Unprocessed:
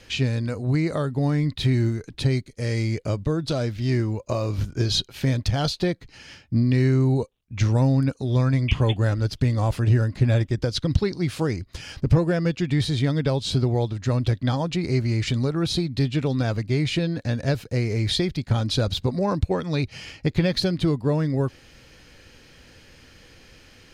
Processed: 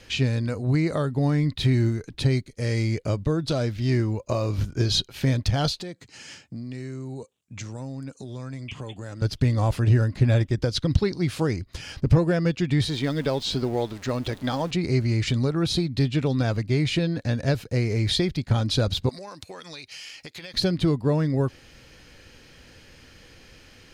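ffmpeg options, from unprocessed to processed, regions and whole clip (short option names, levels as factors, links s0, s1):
-filter_complex "[0:a]asettb=1/sr,asplit=3[s0][s1][s2];[s0]atrim=end=5.814[s3];[s1]atrim=start=5.81:end=9.22,asetpts=PTS-STARTPTS,afade=t=in:d=0.004:c=qsin,afade=t=out:st=3.406:d=0.004:c=qsin,highpass=130,equalizer=f=7600:t=o:w=0.56:g=12.5,acompressor=threshold=0.0158:ratio=3:attack=3.2:release=140:knee=1:detection=peak[s4];[s2]atrim=start=9.216[s5];[s3][s4]acrossfade=d=0.004:c1=hsin:c2=qsin[s6];[s6][s5]acrossfade=d=0.004:c1=qsin:c2=hsin,asettb=1/sr,asplit=3[s7][s8][s9];[s7]atrim=end=12.884[s10];[s8]atrim=start=12.88:end=14.71,asetpts=PTS-STARTPTS,afade=t=in:d=0.004:c=qsin,afade=t=out:st=1.826:d=0.004:c=qsin,aeval=exprs='val(0)+0.5*0.015*sgn(val(0))':c=same,acrossover=split=6900[s11][s12];[s12]acompressor=threshold=0.00398:ratio=4:attack=1:release=60[s13];[s11][s13]amix=inputs=2:normalize=0,equalizer=f=100:t=o:w=1.1:g=-13.5[s14];[s9]atrim=start=14.706[s15];[s10][s14]acrossfade=d=0.004:c1=hsin:c2=qsin[s16];[s16][s15]acrossfade=d=0.004:c1=qsin:c2=hsin,asettb=1/sr,asplit=3[s17][s18][s19];[s17]atrim=end=19.094[s20];[s18]atrim=start=19.09:end=20.54,asetpts=PTS-STARTPTS,afade=t=in:d=0.004:c=qsin,afade=t=out:st=1.446:d=0.004:c=qsin,highpass=f=860:p=1,highshelf=f=2400:g=11.5,acompressor=threshold=0.0141:ratio=5:attack=3.2:release=140:knee=1:detection=peak[s21];[s19]atrim=start=20.536[s22];[s20][s21]acrossfade=d=0.004:c1=hsin:c2=qsin[s23];[s23][s22]acrossfade=d=0.004:c1=qsin:c2=hsin"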